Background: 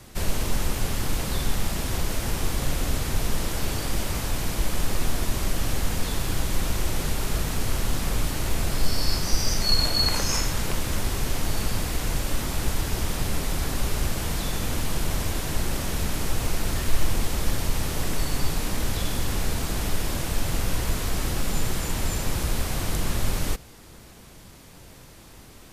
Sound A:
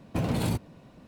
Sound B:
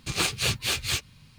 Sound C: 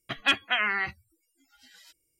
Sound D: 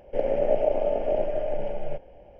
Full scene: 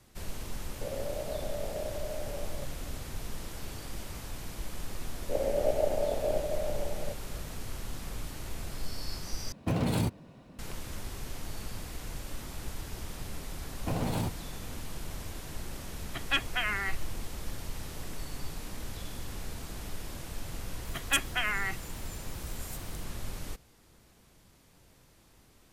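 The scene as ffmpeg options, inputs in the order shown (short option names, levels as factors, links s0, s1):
-filter_complex "[4:a]asplit=2[s0][s1];[1:a]asplit=2[s2][s3];[3:a]asplit=2[s4][s5];[0:a]volume=0.211[s6];[s0]acompressor=threshold=0.0562:ratio=6:attack=3.2:release=140:knee=1:detection=peak[s7];[s3]equalizer=f=810:t=o:w=0.86:g=5[s8];[s5]aexciter=amount=9.1:drive=7.5:freq=6600[s9];[s6]asplit=2[s10][s11];[s10]atrim=end=9.524[s12];[s2]atrim=end=1.07,asetpts=PTS-STARTPTS,volume=0.891[s13];[s11]atrim=start=10.586[s14];[s7]atrim=end=2.39,asetpts=PTS-STARTPTS,volume=0.447,afade=t=in:d=0.004:c=hsin,afade=t=out:st=2.386:d=0.004:c=hsin,adelay=680[s15];[s1]atrim=end=2.39,asetpts=PTS-STARTPTS,volume=0.531,afade=t=in:d=0.004:c=hsin,afade=t=out:st=2.386:d=0.004:c=hsin,adelay=5160[s16];[s8]atrim=end=1.07,asetpts=PTS-STARTPTS,volume=0.562,afade=t=in:d=0.004:c=hsin,afade=t=out:st=1.066:d=0.004:c=hsin,adelay=13720[s17];[s4]atrim=end=2.19,asetpts=PTS-STARTPTS,volume=0.531,afade=t=in:d=0.004:c=hsin,afade=t=out:st=2.186:d=0.004:c=hsin,adelay=16050[s18];[s9]atrim=end=2.19,asetpts=PTS-STARTPTS,volume=0.562,afade=t=in:d=0.004:c=hsin,afade=t=out:st=2.186:d=0.004:c=hsin,adelay=20850[s19];[s12][s13]acrossfade=d=0.004:c1=hsin:c2=hsin[s20];[s20][s14]acrossfade=d=0.004:c1=hsin:c2=hsin[s21];[s21][s15][s16][s17][s18][s19]amix=inputs=6:normalize=0"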